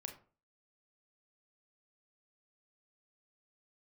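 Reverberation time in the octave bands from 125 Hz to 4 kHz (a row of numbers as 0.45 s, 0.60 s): 0.45 s, 0.45 s, 0.40 s, 0.40 s, 0.30 s, 0.20 s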